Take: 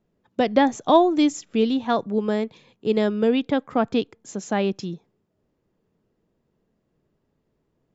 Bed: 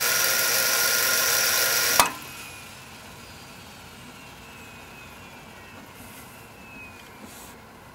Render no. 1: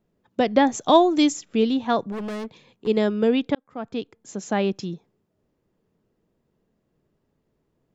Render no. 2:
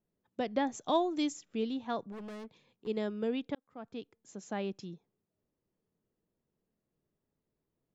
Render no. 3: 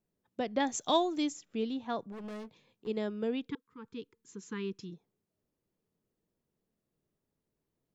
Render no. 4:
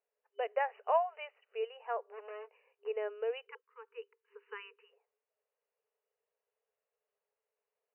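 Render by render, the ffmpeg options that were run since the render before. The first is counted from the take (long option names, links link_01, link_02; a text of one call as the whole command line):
ffmpeg -i in.wav -filter_complex "[0:a]asettb=1/sr,asplit=3[link_01][link_02][link_03];[link_01]atrim=end=0.744[link_04];[link_02]atrim=start=0.74:end=1.34,asetpts=PTS-STARTPTS,afade=type=in:duration=0.004:curve=qsin,afade=type=out:start_time=0.596:duration=0.004:curve=qsin,highshelf=frequency=3500:gain=8.5[link_05];[link_03]atrim=start=1.336[link_06];[link_04][link_05]acrossfade=duration=0.004:curve1=hsin:curve2=qsin[link_07];[link_07][link_06]acrossfade=duration=0.004:curve1=qsin:curve2=hsin,asplit=3[link_08][link_09][link_10];[link_08]afade=type=out:start_time=2.11:duration=0.02[link_11];[link_09]asoftclip=type=hard:threshold=-28.5dB,afade=type=in:start_time=2.11:duration=0.02,afade=type=out:start_time=2.86:duration=0.02[link_12];[link_10]afade=type=in:start_time=2.86:duration=0.02[link_13];[link_11][link_12][link_13]amix=inputs=3:normalize=0,asplit=2[link_14][link_15];[link_14]atrim=end=3.55,asetpts=PTS-STARTPTS,afade=type=out:start_time=3.546:duration=0.004:curve=hsin[link_16];[link_15]atrim=start=3.55,asetpts=PTS-STARTPTS,afade=type=in:duration=0.93[link_17];[link_16][link_17]concat=n=2:v=0:a=1" out.wav
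ffmpeg -i in.wav -af "volume=-13.5dB" out.wav
ffmpeg -i in.wav -filter_complex "[0:a]asettb=1/sr,asplit=3[link_01][link_02][link_03];[link_01]atrim=end=0.604[link_04];[link_02]atrim=start=0.6:end=1.17,asetpts=PTS-STARTPTS,afade=type=in:duration=0.004:curve=qsin,afade=type=out:start_time=0.566:duration=0.004:curve=qsin,highshelf=frequency=2200:gain=10.5[link_05];[link_03]atrim=start=1.166[link_06];[link_04][link_05]acrossfade=duration=0.004:curve1=hsin:curve2=qsin[link_07];[link_07][link_06]acrossfade=duration=0.004:curve1=qsin:curve2=hsin,asettb=1/sr,asplit=3[link_08][link_09][link_10];[link_08]atrim=end=2.224[link_11];[link_09]atrim=start=2.22:end=2.91,asetpts=PTS-STARTPTS,afade=type=in:duration=0.004:curve=qsin,afade=type=out:start_time=0.686:duration=0.004:curve=qsin,asplit=2[link_12][link_13];[link_13]adelay=19,volume=-9.5dB[link_14];[link_12][link_14]amix=inputs=2:normalize=0,atrim=end_sample=30429[link_15];[link_10]atrim=start=2.906[link_16];[link_11][link_15]acrossfade=duration=0.004:curve1=hsin:curve2=qsin[link_17];[link_17][link_16]acrossfade=duration=0.004:curve1=qsin:curve2=hsin,asplit=3[link_18][link_19][link_20];[link_18]afade=type=out:start_time=3.46:duration=0.02[link_21];[link_19]asuperstop=centerf=660:order=20:qfactor=1.7,afade=type=in:start_time=3.46:duration=0.02,afade=type=out:start_time=4.9:duration=0.02[link_22];[link_20]afade=type=in:start_time=4.9:duration=0.02[link_23];[link_21][link_22][link_23]amix=inputs=3:normalize=0" out.wav
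ffmpeg -i in.wav -af "afftfilt=real='re*between(b*sr/4096,400,3000)':imag='im*between(b*sr/4096,400,3000)':win_size=4096:overlap=0.75" out.wav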